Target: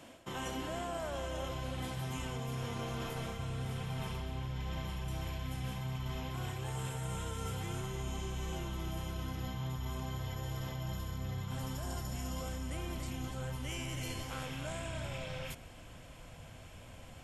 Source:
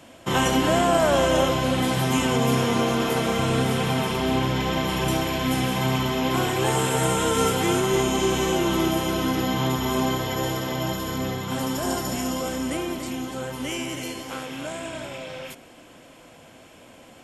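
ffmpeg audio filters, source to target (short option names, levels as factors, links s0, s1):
-af "asubboost=boost=10.5:cutoff=91,areverse,acompressor=threshold=0.0316:ratio=12,areverse,volume=0.531"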